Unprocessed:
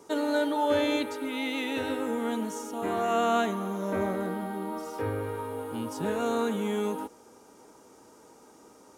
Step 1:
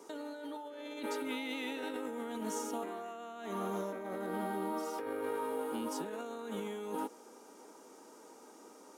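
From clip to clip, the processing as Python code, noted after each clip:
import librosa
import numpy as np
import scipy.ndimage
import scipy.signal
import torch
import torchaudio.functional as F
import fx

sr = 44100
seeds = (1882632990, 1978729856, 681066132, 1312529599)

y = scipy.signal.sosfilt(scipy.signal.butter(4, 220.0, 'highpass', fs=sr, output='sos'), x)
y = fx.over_compress(y, sr, threshold_db=-35.0, ratio=-1.0)
y = F.gain(torch.from_numpy(y), -5.0).numpy()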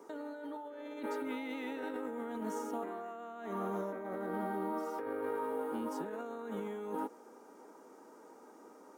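y = fx.band_shelf(x, sr, hz=5500.0, db=-9.5, octaves=2.6)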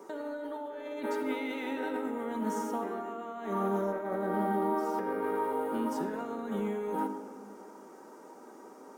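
y = fx.room_shoebox(x, sr, seeds[0], volume_m3=3100.0, walls='mixed', distance_m=1.1)
y = F.gain(torch.from_numpy(y), 4.5).numpy()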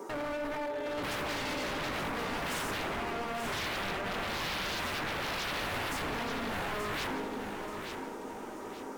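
y = 10.0 ** (-37.5 / 20.0) * (np.abs((x / 10.0 ** (-37.5 / 20.0) + 3.0) % 4.0 - 2.0) - 1.0)
y = fx.echo_feedback(y, sr, ms=881, feedback_pct=38, wet_db=-7.0)
y = F.gain(torch.from_numpy(y), 6.5).numpy()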